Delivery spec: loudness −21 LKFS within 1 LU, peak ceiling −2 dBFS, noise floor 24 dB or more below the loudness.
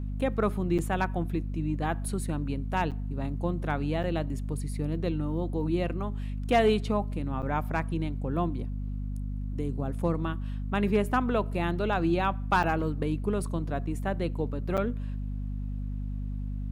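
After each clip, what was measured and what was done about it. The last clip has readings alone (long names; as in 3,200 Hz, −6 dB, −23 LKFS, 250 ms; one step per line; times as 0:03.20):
number of dropouts 6; longest dropout 7.5 ms; mains hum 50 Hz; hum harmonics up to 250 Hz; level of the hum −30 dBFS; integrated loudness −30.0 LKFS; sample peak −14.0 dBFS; target loudness −21.0 LKFS
→ repair the gap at 0:00.78/0:02.91/0:04.03/0:07.42/0:12.63/0:14.77, 7.5 ms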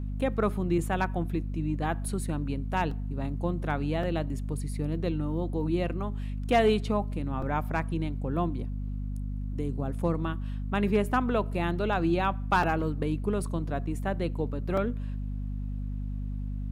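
number of dropouts 0; mains hum 50 Hz; hum harmonics up to 250 Hz; level of the hum −30 dBFS
→ hum removal 50 Hz, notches 5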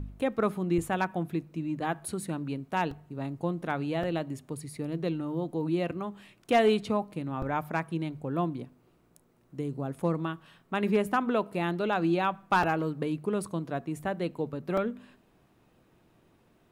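mains hum none found; integrated loudness −31.0 LKFS; sample peak −15.0 dBFS; target loudness −21.0 LKFS
→ level +10 dB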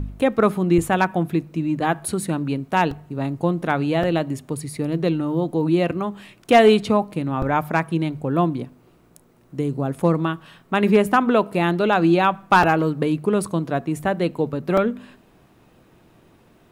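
integrated loudness −21.0 LKFS; sample peak −5.0 dBFS; background noise floor −55 dBFS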